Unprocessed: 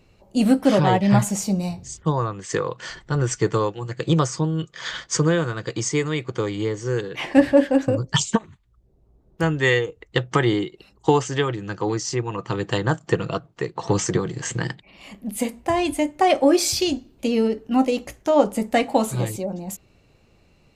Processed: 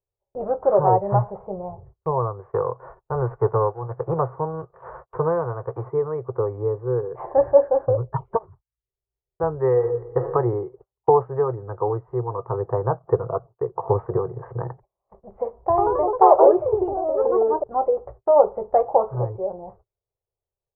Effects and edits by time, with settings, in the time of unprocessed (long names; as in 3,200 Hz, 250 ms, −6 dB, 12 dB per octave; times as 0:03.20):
0:02.40–0:05.89: spectral envelope flattened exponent 0.6
0:09.72–0:10.27: thrown reverb, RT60 0.83 s, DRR 2.5 dB
0:15.69–0:17.90: delay with pitch and tempo change per echo 87 ms, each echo +3 semitones, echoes 3
whole clip: Butterworth low-pass 1,100 Hz 36 dB per octave; noise gate −43 dBFS, range −33 dB; drawn EQ curve 120 Hz 0 dB, 260 Hz −27 dB, 390 Hz +3 dB